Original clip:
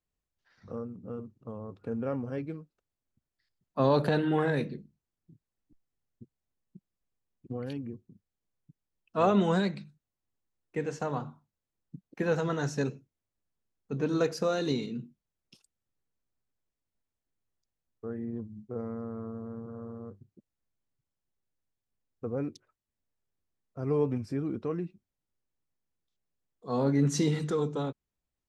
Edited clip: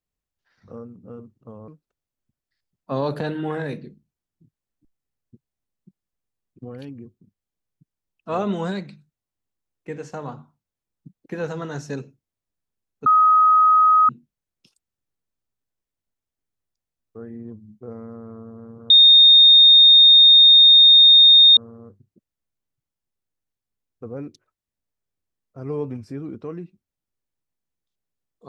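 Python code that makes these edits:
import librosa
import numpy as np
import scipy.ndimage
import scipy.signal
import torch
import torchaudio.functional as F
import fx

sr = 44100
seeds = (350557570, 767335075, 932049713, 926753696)

y = fx.edit(x, sr, fx.cut(start_s=1.68, length_s=0.88),
    fx.bleep(start_s=13.94, length_s=1.03, hz=1260.0, db=-11.0),
    fx.insert_tone(at_s=19.78, length_s=2.67, hz=3680.0, db=-7.0), tone=tone)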